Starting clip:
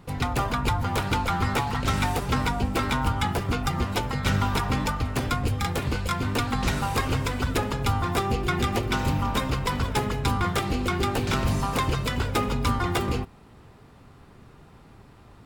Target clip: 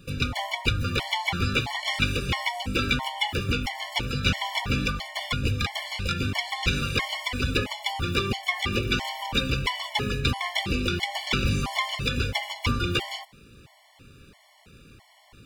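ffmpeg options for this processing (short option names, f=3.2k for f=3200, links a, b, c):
-filter_complex "[0:a]highshelf=f=1.8k:t=q:w=1.5:g=8.5,acrossover=split=5000[a][b];[b]acompressor=threshold=-42dB:ratio=4:attack=1:release=60[c];[a][c]amix=inputs=2:normalize=0,afftfilt=real='re*gt(sin(2*PI*1.5*pts/sr)*(1-2*mod(floor(b*sr/1024/580),2)),0)':imag='im*gt(sin(2*PI*1.5*pts/sr)*(1-2*mod(floor(b*sr/1024/580),2)),0)':win_size=1024:overlap=0.75"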